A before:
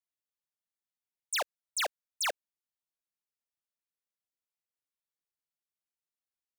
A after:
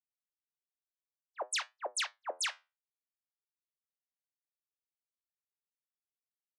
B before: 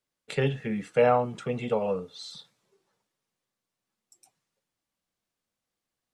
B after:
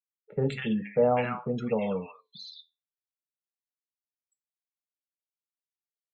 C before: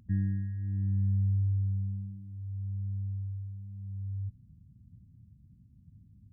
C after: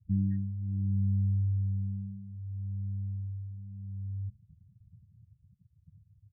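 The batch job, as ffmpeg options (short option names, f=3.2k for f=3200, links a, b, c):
-filter_complex "[0:a]afftfilt=real='re*gte(hypot(re,im),0.0126)':imag='im*gte(hypot(re,im),0.0126)':win_size=1024:overlap=0.75,equalizer=f=210:w=3.4:g=5.5,flanger=delay=8.3:depth=4:regen=-73:speed=0.59:shape=sinusoidal,acrossover=split=1100[a][b];[b]adelay=200[c];[a][c]amix=inputs=2:normalize=0,volume=3dB"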